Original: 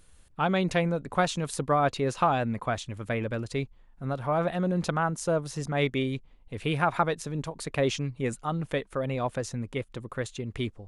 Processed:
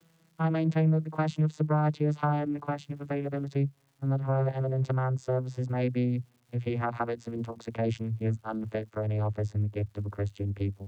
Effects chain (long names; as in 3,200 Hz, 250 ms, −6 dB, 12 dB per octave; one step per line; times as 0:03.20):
vocoder with a gliding carrier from E3, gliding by −9 semitones
surface crackle 410 per second −60 dBFS
in parallel at +1.5 dB: downward compressor, threshold −33 dBFS, peak gain reduction 12 dB
on the sum: level −3 dB